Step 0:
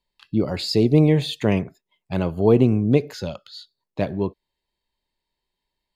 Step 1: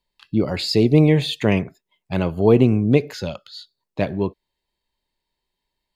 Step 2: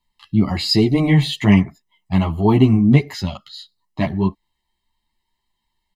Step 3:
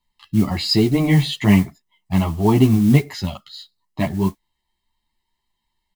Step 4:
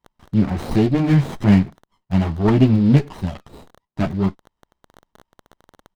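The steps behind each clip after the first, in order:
dynamic bell 2.3 kHz, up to +4 dB, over -43 dBFS, Q 1.2; trim +1.5 dB
comb 1 ms, depth 83%; three-phase chorus; trim +4 dB
modulation noise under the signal 25 dB; trim -1 dB
resampled via 11.025 kHz; crackle 34 per s -35 dBFS; sliding maximum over 17 samples

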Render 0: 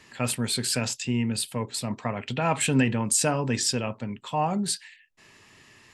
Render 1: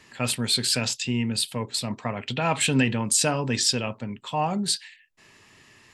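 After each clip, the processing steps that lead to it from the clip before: dynamic bell 3.8 kHz, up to +7 dB, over -44 dBFS, Q 1.2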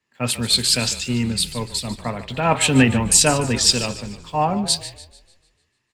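in parallel at -11.5 dB: bit crusher 7-bit; on the sum: frequency-shifting echo 149 ms, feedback 65%, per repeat -41 Hz, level -12 dB; three bands expanded up and down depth 70%; trim +2 dB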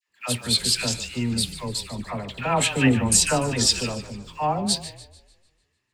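phase dispersion lows, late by 87 ms, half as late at 1 kHz; trim -4 dB

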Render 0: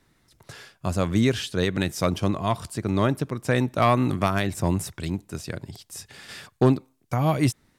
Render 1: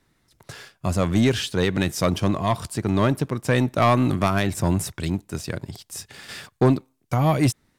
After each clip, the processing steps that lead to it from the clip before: waveshaping leveller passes 1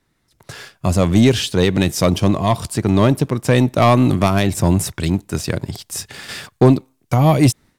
dynamic bell 1.5 kHz, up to -6 dB, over -39 dBFS, Q 1.5; level rider gain up to 11.5 dB; trim -1.5 dB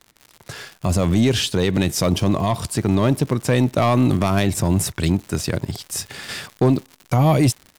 peak limiter -9 dBFS, peak gain reduction 5.5 dB; crackle 140 per s -31 dBFS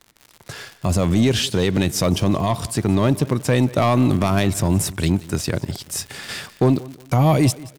feedback delay 181 ms, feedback 30%, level -20 dB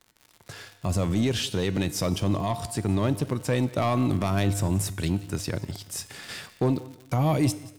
feedback comb 100 Hz, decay 0.93 s, harmonics odd, mix 60%

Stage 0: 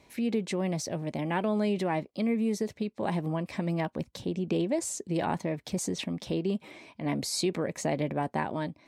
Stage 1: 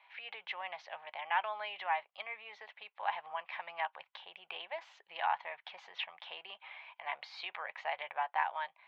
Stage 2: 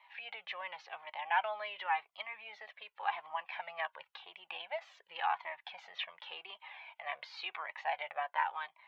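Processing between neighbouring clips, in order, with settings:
elliptic band-pass 810–3200 Hz, stop band 50 dB; trim +1.5 dB
Shepard-style flanger falling 0.91 Hz; trim +4.5 dB

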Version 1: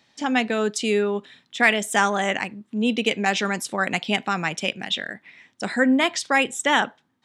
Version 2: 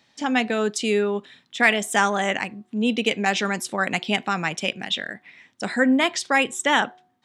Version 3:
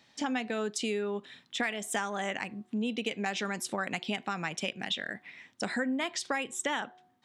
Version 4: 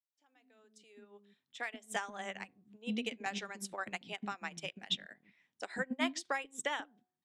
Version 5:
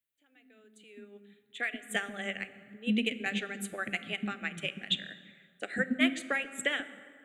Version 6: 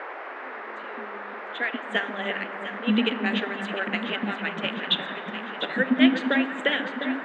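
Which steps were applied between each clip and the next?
de-hum 365.9 Hz, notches 3
compression 6:1, threshold -28 dBFS, peak gain reduction 15 dB; trim -1.5 dB
fade-in on the opening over 2.05 s; bands offset in time highs, lows 140 ms, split 330 Hz; upward expansion 2.5:1, over -42 dBFS
static phaser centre 2.3 kHz, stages 4; plate-style reverb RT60 2.2 s, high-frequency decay 0.55×, DRR 12.5 dB; trim +8.5 dB
cabinet simulation 220–4400 Hz, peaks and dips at 270 Hz +5 dB, 1.2 kHz -7 dB, 2.3 kHz -7 dB; echo whose repeats swap between lows and highs 351 ms, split 1.8 kHz, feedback 80%, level -8 dB; band noise 360–1900 Hz -45 dBFS; trim +8 dB

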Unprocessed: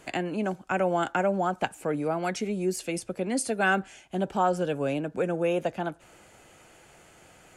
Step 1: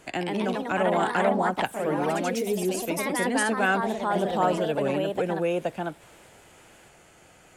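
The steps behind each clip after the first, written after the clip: ever faster or slower copies 144 ms, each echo +2 st, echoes 3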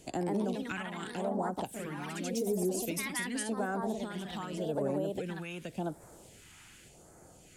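compression, threshold -28 dBFS, peak gain reduction 10.5 dB; phase shifter stages 2, 0.87 Hz, lowest notch 490–2800 Hz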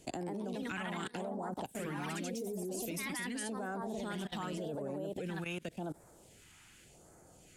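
level held to a coarse grid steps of 21 dB; trim +3 dB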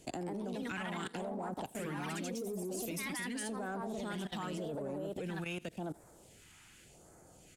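in parallel at -8 dB: hard clipper -38 dBFS, distortion -12 dB; on the sum: delay 84 ms -22.5 dB; trim -2.5 dB

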